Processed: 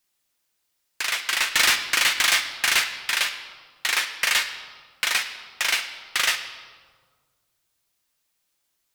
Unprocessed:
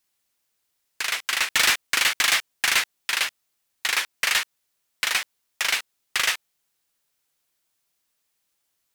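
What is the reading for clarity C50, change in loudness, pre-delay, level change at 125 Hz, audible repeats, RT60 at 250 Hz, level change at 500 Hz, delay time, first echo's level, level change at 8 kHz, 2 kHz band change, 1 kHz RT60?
10.0 dB, +1.0 dB, 3 ms, can't be measured, no echo audible, 2.1 s, +0.5 dB, no echo audible, no echo audible, +0.5 dB, +1.0 dB, 1.5 s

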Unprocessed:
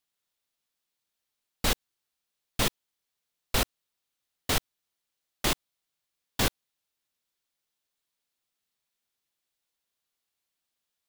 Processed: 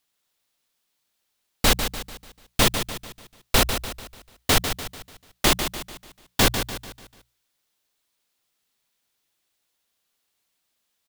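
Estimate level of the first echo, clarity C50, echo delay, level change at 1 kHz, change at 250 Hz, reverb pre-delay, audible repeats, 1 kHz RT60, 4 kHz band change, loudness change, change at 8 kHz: −8.5 dB, no reverb audible, 147 ms, +8.5 dB, +8.5 dB, no reverb audible, 4, no reverb audible, +8.5 dB, +7.0 dB, +8.5 dB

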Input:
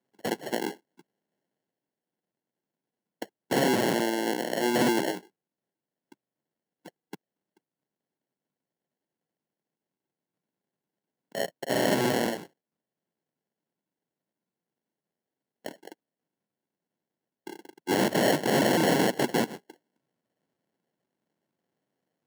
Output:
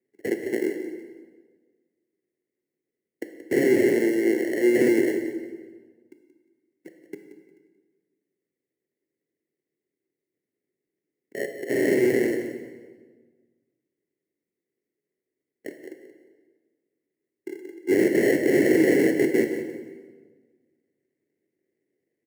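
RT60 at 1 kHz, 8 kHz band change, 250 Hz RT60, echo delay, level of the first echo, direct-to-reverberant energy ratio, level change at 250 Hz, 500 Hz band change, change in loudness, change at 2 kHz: 1.4 s, −4.0 dB, 1.7 s, 178 ms, −13.0 dB, 5.0 dB, +6.0 dB, +6.0 dB, +4.0 dB, +2.5 dB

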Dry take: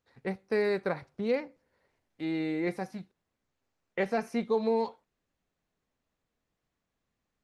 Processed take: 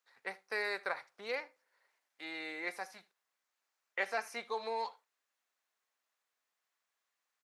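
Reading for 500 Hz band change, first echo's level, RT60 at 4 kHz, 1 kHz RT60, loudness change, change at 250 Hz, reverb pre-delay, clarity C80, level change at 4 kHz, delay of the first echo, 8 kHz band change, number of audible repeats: −12.0 dB, −23.0 dB, no reverb audible, no reverb audible, −7.5 dB, −20.5 dB, no reverb audible, no reverb audible, +1.0 dB, 76 ms, can't be measured, 1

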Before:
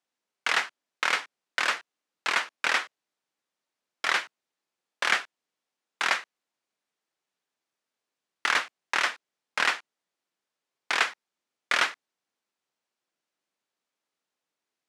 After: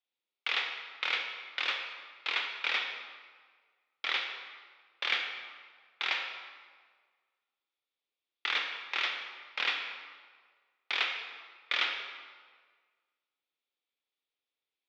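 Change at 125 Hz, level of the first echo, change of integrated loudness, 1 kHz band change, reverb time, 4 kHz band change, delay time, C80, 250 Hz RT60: can't be measured, no echo audible, −5.5 dB, −9.5 dB, 1.6 s, −1.0 dB, no echo audible, 6.0 dB, 1.6 s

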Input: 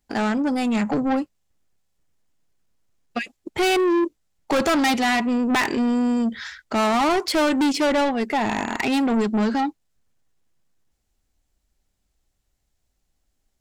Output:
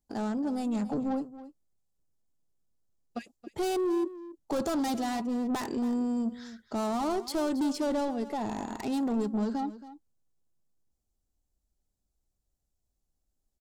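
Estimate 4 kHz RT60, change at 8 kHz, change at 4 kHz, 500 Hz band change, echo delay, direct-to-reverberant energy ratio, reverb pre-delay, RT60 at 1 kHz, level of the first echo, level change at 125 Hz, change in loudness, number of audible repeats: no reverb audible, −10.0 dB, −15.0 dB, −9.0 dB, 275 ms, no reverb audible, no reverb audible, no reverb audible, −15.5 dB, −8.0 dB, −9.5 dB, 1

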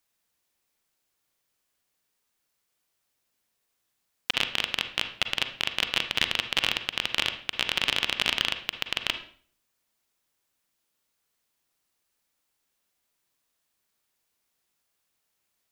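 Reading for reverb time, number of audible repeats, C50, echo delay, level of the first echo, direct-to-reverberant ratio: 0.50 s, no echo audible, 10.0 dB, no echo audible, no echo audible, 8.0 dB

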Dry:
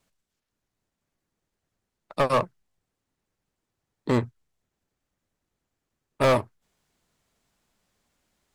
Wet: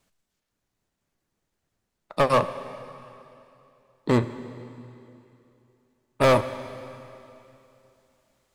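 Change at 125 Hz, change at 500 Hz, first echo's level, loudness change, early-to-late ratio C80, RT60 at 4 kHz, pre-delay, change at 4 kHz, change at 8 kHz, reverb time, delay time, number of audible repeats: +2.0 dB, +2.5 dB, no echo audible, +0.5 dB, 13.0 dB, 2.7 s, 12 ms, +2.5 dB, +2.5 dB, 2.9 s, no echo audible, no echo audible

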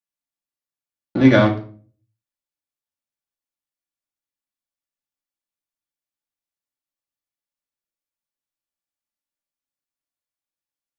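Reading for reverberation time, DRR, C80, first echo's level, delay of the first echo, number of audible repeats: 0.45 s, −1.5 dB, 16.0 dB, no echo audible, no echo audible, no echo audible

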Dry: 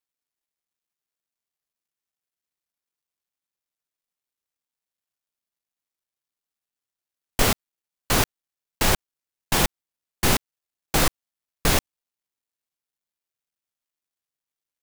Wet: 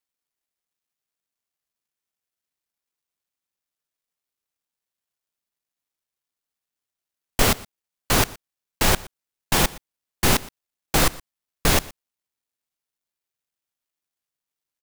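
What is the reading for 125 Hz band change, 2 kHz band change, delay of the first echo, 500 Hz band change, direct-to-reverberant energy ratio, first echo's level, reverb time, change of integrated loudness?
+1.5 dB, +1.5 dB, 119 ms, +1.5 dB, no reverb audible, −21.5 dB, no reverb audible, +1.5 dB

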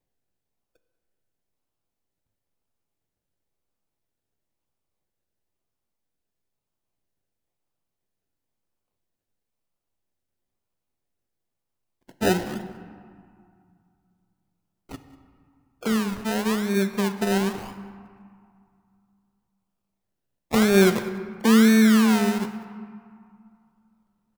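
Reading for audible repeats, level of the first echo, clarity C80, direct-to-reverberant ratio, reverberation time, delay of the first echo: 1, −20.5 dB, 11.0 dB, 8.5 dB, 2.3 s, 191 ms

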